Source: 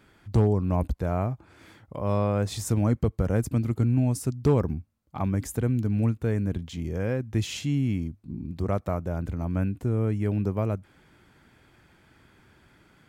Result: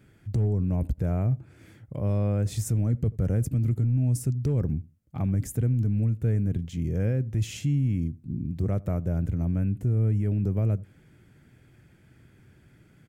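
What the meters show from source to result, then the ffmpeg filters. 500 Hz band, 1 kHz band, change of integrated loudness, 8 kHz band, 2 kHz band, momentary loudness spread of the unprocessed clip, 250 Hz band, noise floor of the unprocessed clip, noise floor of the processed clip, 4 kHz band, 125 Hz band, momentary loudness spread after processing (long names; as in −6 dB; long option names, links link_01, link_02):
−6.0 dB, below −10 dB, 0.0 dB, −1.5 dB, −7.0 dB, 9 LU, −2.0 dB, −60 dBFS, −58 dBFS, can't be measured, +2.0 dB, 7 LU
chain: -filter_complex "[0:a]equalizer=frequency=125:width_type=o:width=1:gain=8,equalizer=frequency=1000:width_type=o:width=1:gain=-11,equalizer=frequency=4000:width_type=o:width=1:gain=-7,alimiter=limit=-18.5dB:level=0:latency=1:release=13,asplit=2[link_01][link_02];[link_02]adelay=82,lowpass=frequency=820:poles=1,volume=-21dB,asplit=2[link_03][link_04];[link_04]adelay=82,lowpass=frequency=820:poles=1,volume=0.2[link_05];[link_01][link_03][link_05]amix=inputs=3:normalize=0"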